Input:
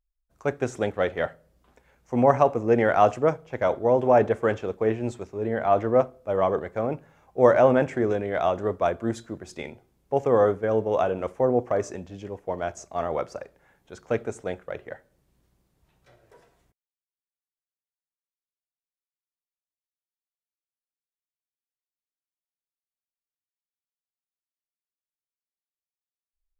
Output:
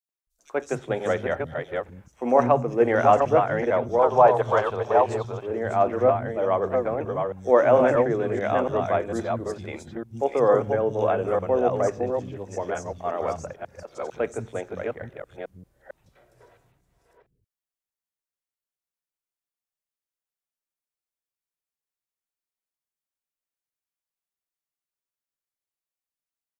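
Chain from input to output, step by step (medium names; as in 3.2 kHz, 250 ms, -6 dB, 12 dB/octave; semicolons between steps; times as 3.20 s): chunks repeated in reverse 452 ms, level -4 dB; 3.90–5.32 s: ten-band graphic EQ 250 Hz -10 dB, 1 kHz +10 dB, 2 kHz -6 dB, 4 kHz +9 dB; three bands offset in time highs, mids, lows 90/270 ms, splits 220/3900 Hz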